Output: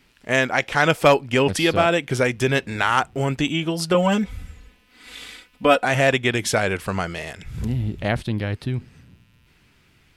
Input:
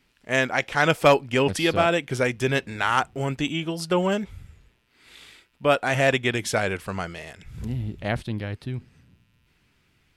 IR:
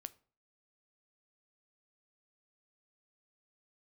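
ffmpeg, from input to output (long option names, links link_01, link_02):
-filter_complex "[0:a]asettb=1/sr,asplit=3[link_01][link_02][link_03];[link_01]atrim=end=3.944[link_04];[link_02]atrim=start=3.94:end=5.85,asetpts=PTS-STARTPTS,afade=type=in:duration=0.004:curve=qsin,afade=type=out:start_time=1.906:duration=0.004:curve=qsin,aecho=1:1:4:0.87,atrim=end_sample=84231[link_05];[link_03]atrim=start=5.846[link_06];[link_04][link_05]acrossfade=duration=0.004:curve1=hsin:curve2=qsin[link_07];[link_07][link_06]acrossfade=duration=0.004:curve1=qsin:curve2=hsin,asplit=2[link_08][link_09];[link_09]acompressor=threshold=-29dB:ratio=6,volume=2dB[link_10];[link_08][link_10]amix=inputs=2:normalize=0"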